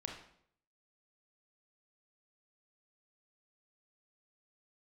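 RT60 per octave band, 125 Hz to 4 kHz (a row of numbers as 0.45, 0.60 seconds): 0.70, 0.70, 0.70, 0.65, 0.55, 0.55 seconds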